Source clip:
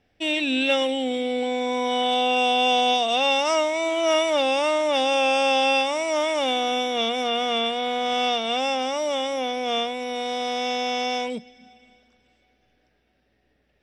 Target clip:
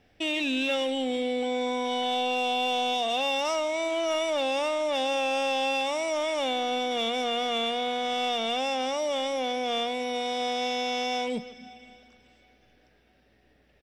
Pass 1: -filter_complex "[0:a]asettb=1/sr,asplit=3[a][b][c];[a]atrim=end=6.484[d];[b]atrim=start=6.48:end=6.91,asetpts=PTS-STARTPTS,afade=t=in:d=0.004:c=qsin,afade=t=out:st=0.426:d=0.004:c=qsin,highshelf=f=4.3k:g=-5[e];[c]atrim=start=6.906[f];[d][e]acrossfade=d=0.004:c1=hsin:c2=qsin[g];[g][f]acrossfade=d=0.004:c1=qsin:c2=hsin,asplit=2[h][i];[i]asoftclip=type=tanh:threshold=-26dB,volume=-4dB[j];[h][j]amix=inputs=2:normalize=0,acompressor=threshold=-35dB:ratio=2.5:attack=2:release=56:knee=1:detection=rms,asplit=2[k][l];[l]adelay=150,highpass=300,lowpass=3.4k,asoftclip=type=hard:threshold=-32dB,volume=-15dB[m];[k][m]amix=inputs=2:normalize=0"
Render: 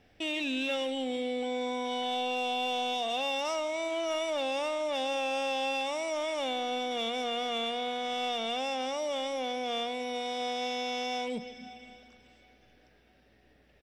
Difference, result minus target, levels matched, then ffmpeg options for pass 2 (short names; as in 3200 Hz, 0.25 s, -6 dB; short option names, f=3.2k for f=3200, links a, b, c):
compressor: peak gain reduction +4.5 dB
-filter_complex "[0:a]asettb=1/sr,asplit=3[a][b][c];[a]atrim=end=6.484[d];[b]atrim=start=6.48:end=6.91,asetpts=PTS-STARTPTS,afade=t=in:d=0.004:c=qsin,afade=t=out:st=0.426:d=0.004:c=qsin,highshelf=f=4.3k:g=-5[e];[c]atrim=start=6.906[f];[d][e]acrossfade=d=0.004:c1=hsin:c2=qsin[g];[g][f]acrossfade=d=0.004:c1=qsin:c2=hsin,asplit=2[h][i];[i]asoftclip=type=tanh:threshold=-26dB,volume=-4dB[j];[h][j]amix=inputs=2:normalize=0,acompressor=threshold=-27.5dB:ratio=2.5:attack=2:release=56:knee=1:detection=rms,asplit=2[k][l];[l]adelay=150,highpass=300,lowpass=3.4k,asoftclip=type=hard:threshold=-32dB,volume=-15dB[m];[k][m]amix=inputs=2:normalize=0"